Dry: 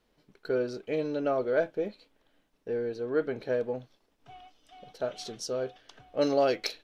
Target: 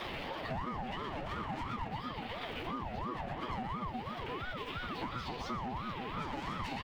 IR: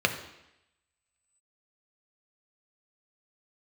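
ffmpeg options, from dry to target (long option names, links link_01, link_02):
-filter_complex "[0:a]aeval=exprs='val(0)+0.5*0.0141*sgn(val(0))':channel_layout=same,highshelf=frequency=4600:width_type=q:width=1.5:gain=-13.5,bandreject=frequency=3600:width=16,asplit=2[link_01][link_02];[link_02]adelay=16,volume=-8dB[link_03];[link_01][link_03]amix=inputs=2:normalize=0,asplit=2[link_04][link_05];[link_05]adelay=121,lowpass=frequency=4400:poles=1,volume=-4dB,asplit=2[link_06][link_07];[link_07]adelay=121,lowpass=frequency=4400:poles=1,volume=0.53,asplit=2[link_08][link_09];[link_09]adelay=121,lowpass=frequency=4400:poles=1,volume=0.53,asplit=2[link_10][link_11];[link_11]adelay=121,lowpass=frequency=4400:poles=1,volume=0.53,asplit=2[link_12][link_13];[link_13]adelay=121,lowpass=frequency=4400:poles=1,volume=0.53,asplit=2[link_14][link_15];[link_15]adelay=121,lowpass=frequency=4400:poles=1,volume=0.53,asplit=2[link_16][link_17];[link_17]adelay=121,lowpass=frequency=4400:poles=1,volume=0.53[link_18];[link_04][link_06][link_08][link_10][link_12][link_14][link_16][link_18]amix=inputs=8:normalize=0,asoftclip=type=hard:threshold=-28.5dB,asplit=2[link_19][link_20];[1:a]atrim=start_sample=2205,adelay=8[link_21];[link_20][link_21]afir=irnorm=-1:irlink=0,volume=-8.5dB[link_22];[link_19][link_22]amix=inputs=2:normalize=0,acompressor=threshold=-37dB:ratio=6,aeval=exprs='val(0)*sin(2*PI*500*n/s+500*0.5/2.9*sin(2*PI*2.9*n/s))':channel_layout=same,volume=2.5dB"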